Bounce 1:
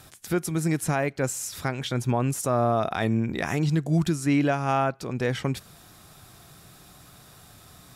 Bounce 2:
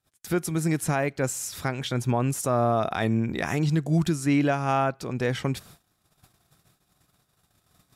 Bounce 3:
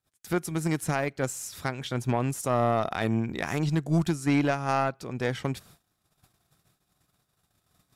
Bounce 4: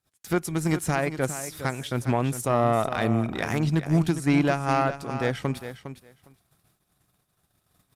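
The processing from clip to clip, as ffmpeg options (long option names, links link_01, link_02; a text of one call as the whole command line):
ffmpeg -i in.wav -af "agate=range=-32dB:threshold=-47dB:ratio=16:detection=peak" out.wav
ffmpeg -i in.wav -af "aeval=exprs='0.211*(cos(1*acos(clip(val(0)/0.211,-1,1)))-cos(1*PI/2))+0.0299*(cos(3*acos(clip(val(0)/0.211,-1,1)))-cos(3*PI/2))+0.00335*(cos(4*acos(clip(val(0)/0.211,-1,1)))-cos(4*PI/2))':channel_layout=same" out.wav
ffmpeg -i in.wav -filter_complex "[0:a]asplit=2[link_01][link_02];[link_02]aecho=0:1:407|814:0.282|0.0423[link_03];[link_01][link_03]amix=inputs=2:normalize=0,volume=2.5dB" -ar 48000 -c:a libopus -b:a 48k out.opus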